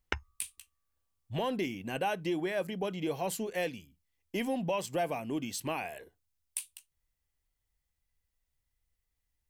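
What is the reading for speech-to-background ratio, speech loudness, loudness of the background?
4.5 dB, -35.0 LUFS, -39.5 LUFS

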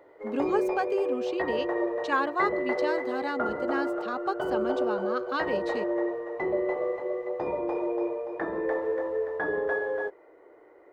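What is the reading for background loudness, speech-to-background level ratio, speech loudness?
-30.0 LUFS, -2.5 dB, -32.5 LUFS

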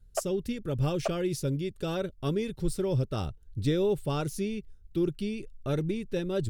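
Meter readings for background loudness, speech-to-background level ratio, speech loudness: -39.0 LUFS, 7.5 dB, -31.5 LUFS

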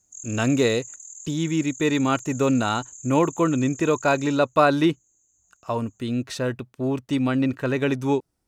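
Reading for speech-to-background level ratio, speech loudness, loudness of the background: 15.5 dB, -23.5 LUFS, -39.0 LUFS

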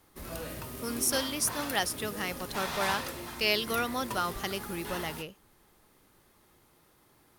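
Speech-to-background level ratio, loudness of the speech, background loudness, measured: 6.5 dB, -32.0 LUFS, -38.5 LUFS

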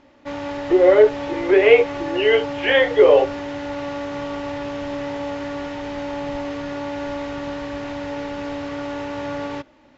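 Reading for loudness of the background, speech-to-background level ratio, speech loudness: -28.5 LUFS, 12.5 dB, -16.0 LUFS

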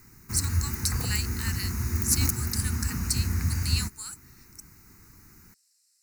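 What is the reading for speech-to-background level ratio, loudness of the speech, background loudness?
-2.0 dB, -31.5 LUFS, -29.5 LUFS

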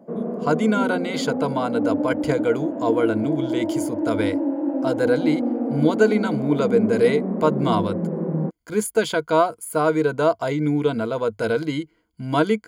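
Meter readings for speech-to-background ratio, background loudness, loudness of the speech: 2.5 dB, -25.5 LUFS, -23.0 LUFS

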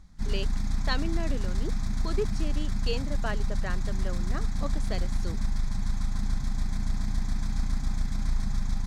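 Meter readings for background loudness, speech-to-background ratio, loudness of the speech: -33.0 LUFS, -4.5 dB, -37.5 LUFS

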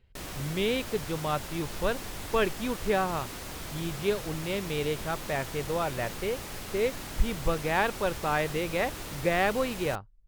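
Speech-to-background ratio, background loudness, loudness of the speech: 8.0 dB, -39.0 LUFS, -31.0 LUFS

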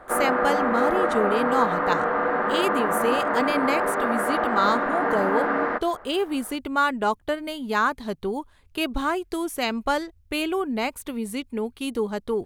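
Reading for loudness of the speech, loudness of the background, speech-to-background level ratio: -27.0 LUFS, -23.5 LUFS, -3.5 dB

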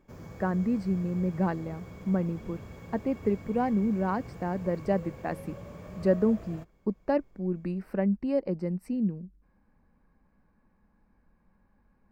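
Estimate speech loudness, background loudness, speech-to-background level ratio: -30.0 LUFS, -45.0 LUFS, 15.0 dB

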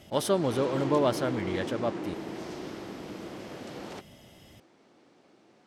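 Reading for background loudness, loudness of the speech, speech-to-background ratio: -37.5 LUFS, -29.0 LUFS, 8.5 dB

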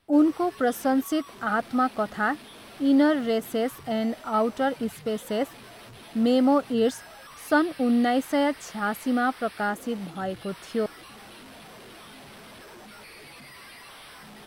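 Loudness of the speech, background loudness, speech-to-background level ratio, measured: -25.5 LUFS, -45.0 LUFS, 19.5 dB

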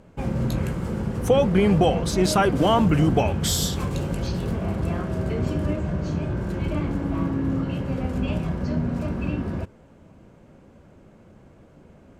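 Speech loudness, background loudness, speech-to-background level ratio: -21.5 LUFS, -27.0 LUFS, 5.5 dB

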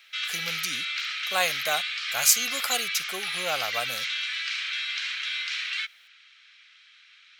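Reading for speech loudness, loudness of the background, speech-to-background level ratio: -27.5 LUFS, -28.5 LUFS, 1.0 dB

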